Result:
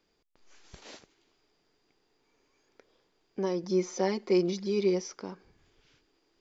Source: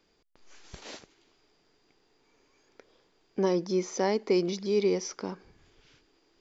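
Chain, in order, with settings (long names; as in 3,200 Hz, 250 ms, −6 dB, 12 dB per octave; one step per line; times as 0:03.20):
0:03.63–0:05.02: comb filter 5.6 ms, depth 91%
level −4.5 dB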